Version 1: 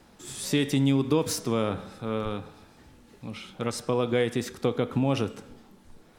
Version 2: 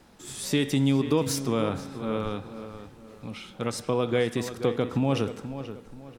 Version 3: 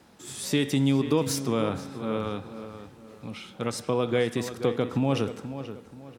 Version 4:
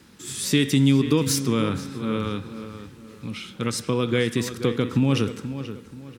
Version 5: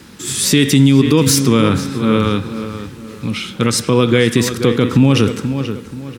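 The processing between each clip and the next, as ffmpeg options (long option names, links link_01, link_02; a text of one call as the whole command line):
ffmpeg -i in.wav -filter_complex "[0:a]asplit=2[link_01][link_02];[link_02]adelay=481,lowpass=frequency=2900:poles=1,volume=-11dB,asplit=2[link_03][link_04];[link_04]adelay=481,lowpass=frequency=2900:poles=1,volume=0.35,asplit=2[link_05][link_06];[link_06]adelay=481,lowpass=frequency=2900:poles=1,volume=0.35,asplit=2[link_07][link_08];[link_08]adelay=481,lowpass=frequency=2900:poles=1,volume=0.35[link_09];[link_01][link_03][link_05][link_07][link_09]amix=inputs=5:normalize=0" out.wav
ffmpeg -i in.wav -af "highpass=74" out.wav
ffmpeg -i in.wav -af "equalizer=frequency=700:width=1.6:gain=-15,volume=6.5dB" out.wav
ffmpeg -i in.wav -af "alimiter=level_in=13dB:limit=-1dB:release=50:level=0:latency=1,volume=-1dB" out.wav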